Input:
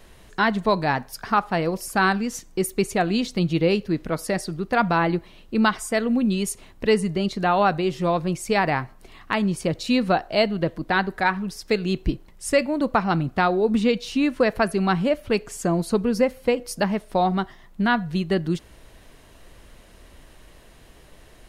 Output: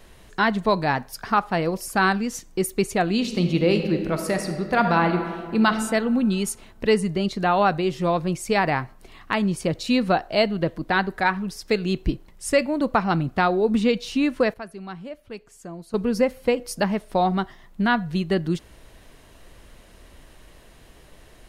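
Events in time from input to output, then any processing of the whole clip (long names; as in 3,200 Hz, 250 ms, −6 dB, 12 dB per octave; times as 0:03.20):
0:03.11–0:05.67: thrown reverb, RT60 1.8 s, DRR 5.5 dB
0:14.08–0:16.40: duck −15 dB, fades 0.46 s logarithmic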